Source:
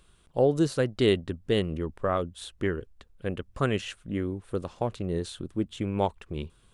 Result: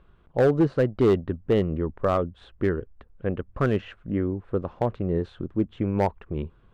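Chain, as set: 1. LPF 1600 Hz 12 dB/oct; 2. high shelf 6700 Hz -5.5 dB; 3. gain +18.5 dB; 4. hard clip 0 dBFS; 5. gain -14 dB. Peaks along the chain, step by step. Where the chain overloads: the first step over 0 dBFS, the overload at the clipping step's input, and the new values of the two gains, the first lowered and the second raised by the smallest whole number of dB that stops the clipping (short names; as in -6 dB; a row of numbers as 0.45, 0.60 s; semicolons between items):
-11.5, -11.5, +7.0, 0.0, -14.0 dBFS; step 3, 7.0 dB; step 3 +11.5 dB, step 5 -7 dB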